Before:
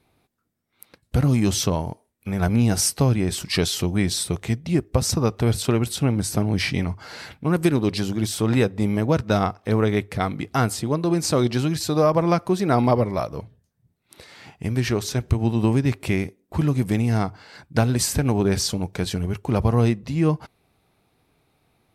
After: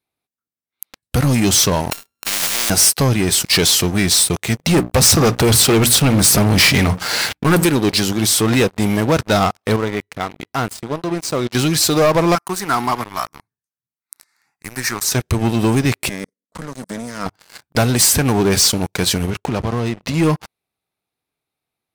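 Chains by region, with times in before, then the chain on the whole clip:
1.91–2.70 s: sorted samples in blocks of 32 samples + spectrum-flattening compressor 10:1
4.59–7.64 s: waveshaping leveller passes 2 + hum notches 60/120/180/240/300 Hz
9.76–11.55 s: treble shelf 3.7 kHz -9.5 dB + feedback comb 980 Hz, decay 0.24 s
12.35–15.12 s: high-pass 500 Hz 6 dB/octave + static phaser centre 1.3 kHz, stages 4
16.09–17.26 s: low-pass 9.5 kHz 24 dB/octave + level held to a coarse grid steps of 14 dB + static phaser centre 530 Hz, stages 8
19.30–20.14 s: waveshaping leveller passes 1 + compression, threshold -23 dBFS + distance through air 62 m
whole clip: tilt EQ +2 dB/octave; waveshaping leveller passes 5; trim -7.5 dB

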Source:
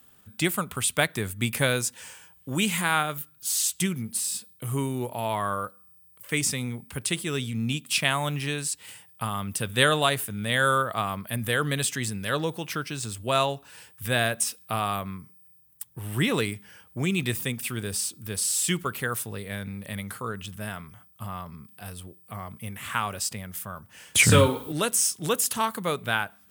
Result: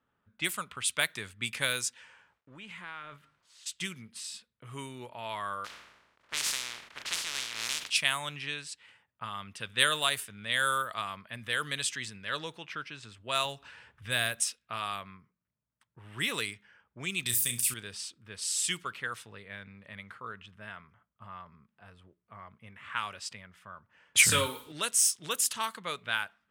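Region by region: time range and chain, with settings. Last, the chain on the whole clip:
2.04–3.66 s: compression 4:1, threshold -32 dBFS + transient shaper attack -5 dB, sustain +9 dB + small samples zeroed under -48.5 dBFS
5.64–7.89 s: spectral contrast reduction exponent 0.12 + decay stretcher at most 37 dB/s
13.45–14.42 s: bass shelf 110 Hz +12 dB + upward compressor, threshold -31 dBFS
17.26–17.74 s: tone controls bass +9 dB, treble +15 dB + compression 4:1, threshold -21 dBFS + flutter echo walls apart 5.7 m, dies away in 0.24 s
whole clip: level-controlled noise filter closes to 1 kHz, open at -19.5 dBFS; tilt shelf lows -8 dB, about 890 Hz; band-stop 760 Hz, Q 12; trim -8.5 dB

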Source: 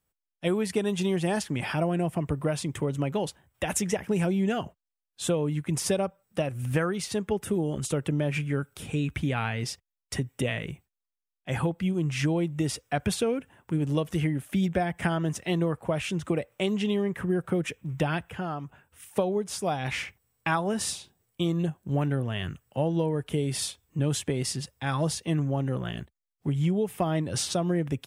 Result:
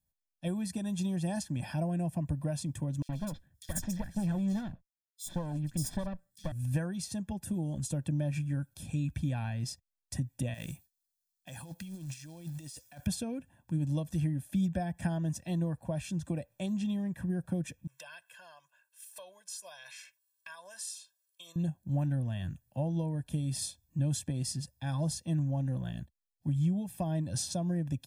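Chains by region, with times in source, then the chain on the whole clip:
3.02–6.52 s: comb filter that takes the minimum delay 0.56 ms + bands offset in time highs, lows 70 ms, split 3.5 kHz
10.54–13.07 s: tilt EQ +2.5 dB/octave + short-mantissa float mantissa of 2-bit + compressor with a negative ratio -38 dBFS
17.87–21.56 s: high-pass 1.3 kHz + comb 1.9 ms, depth 94% + compression 2:1, threshold -36 dBFS
whole clip: high-order bell 1.5 kHz -9 dB 2.4 oct; comb 1.2 ms, depth 95%; dynamic bell 3.2 kHz, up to -3 dB, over -43 dBFS, Q 0.87; trim -7 dB

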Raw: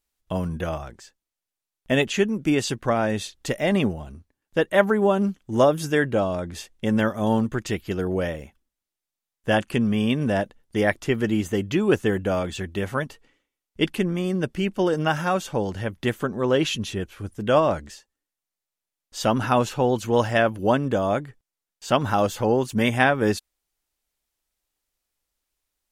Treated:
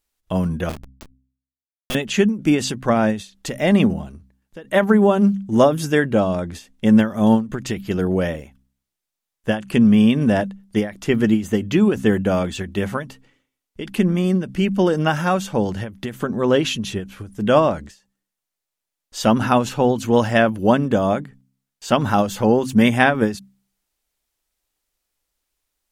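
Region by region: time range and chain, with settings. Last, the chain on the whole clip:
0.69–1.95 s: resonant high shelf 2.3 kHz +12 dB, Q 3 + Schmitt trigger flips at -24.5 dBFS
whole clip: de-hum 65.27 Hz, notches 4; dynamic bell 210 Hz, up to +7 dB, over -38 dBFS, Q 2.6; endings held to a fixed fall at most 160 dB/s; trim +3.5 dB

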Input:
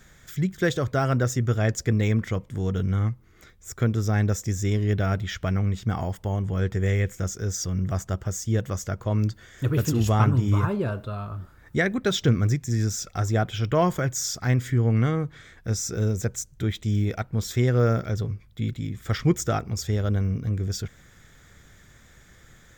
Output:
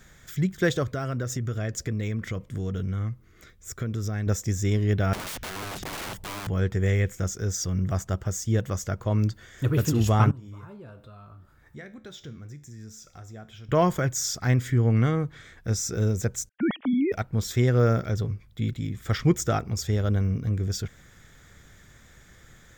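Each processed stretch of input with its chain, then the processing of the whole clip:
0.83–4.27 s: peaking EQ 860 Hz -8 dB 0.29 oct + compression 4:1, threshold -26 dBFS
5.13–6.47 s: bass shelf 170 Hz +11.5 dB + compression 16:1, threshold -18 dBFS + integer overflow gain 30 dB
10.31–13.69 s: compression 2:1, threshold -45 dBFS + feedback comb 73 Hz, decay 0.44 s
16.49–17.12 s: formants replaced by sine waves + low-pass 2.4 kHz
whole clip: none

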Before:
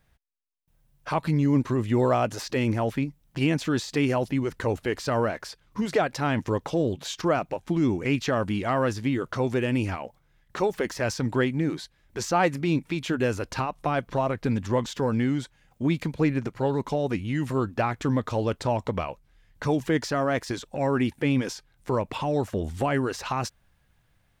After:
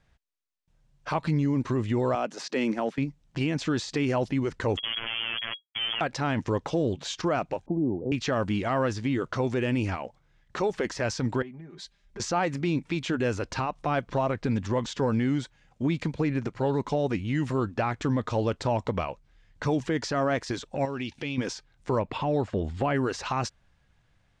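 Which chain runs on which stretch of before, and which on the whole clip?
2.15–2.98 s: steep high-pass 160 Hz 48 dB/octave + transient shaper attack -2 dB, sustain -6 dB
4.77–6.01 s: Schmitt trigger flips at -41 dBFS + frequency inversion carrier 3.3 kHz + robot voice 114 Hz
7.66–8.12 s: steep low-pass 790 Hz 48 dB/octave + bass shelf 300 Hz -6.5 dB + three bands compressed up and down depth 40%
11.42–12.20 s: compression 12:1, threshold -40 dBFS + comb 5 ms, depth 87% + three bands expanded up and down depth 70%
20.85–21.38 s: high-order bell 3.9 kHz +10.5 dB + compression 2:1, threshold -37 dBFS
21.99–22.96 s: distance through air 79 m + band-stop 5.9 kHz, Q 7.8
whole clip: low-pass 7.7 kHz 24 dB/octave; peak limiter -17 dBFS

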